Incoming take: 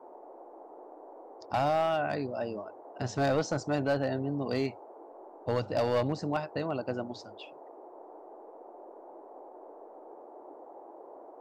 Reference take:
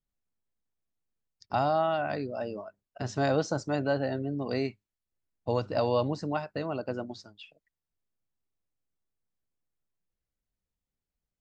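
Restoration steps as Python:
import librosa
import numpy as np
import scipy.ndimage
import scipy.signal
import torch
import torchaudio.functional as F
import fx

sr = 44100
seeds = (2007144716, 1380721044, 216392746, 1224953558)

y = fx.fix_declip(x, sr, threshold_db=-21.5)
y = fx.noise_reduce(y, sr, print_start_s=0.0, print_end_s=0.5, reduce_db=30.0)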